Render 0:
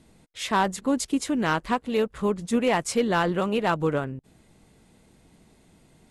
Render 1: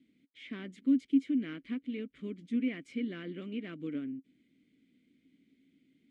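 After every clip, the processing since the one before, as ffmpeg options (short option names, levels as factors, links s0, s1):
-filter_complex "[0:a]asplit=3[s0][s1][s2];[s0]bandpass=f=270:t=q:w=8,volume=1[s3];[s1]bandpass=f=2290:t=q:w=8,volume=0.501[s4];[s2]bandpass=f=3010:t=q:w=8,volume=0.355[s5];[s3][s4][s5]amix=inputs=3:normalize=0,acrossover=split=2500[s6][s7];[s7]acompressor=threshold=0.00126:ratio=4:attack=1:release=60[s8];[s6][s8]amix=inputs=2:normalize=0"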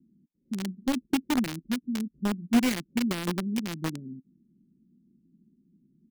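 -filter_complex "[0:a]aecho=1:1:5.4:0.76,acrossover=split=290[s0][s1];[s1]acrusher=bits=5:mix=0:aa=0.000001[s2];[s0][s2]amix=inputs=2:normalize=0,volume=2.82"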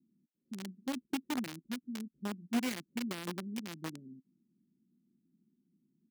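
-af "highpass=f=210:p=1,volume=0.398"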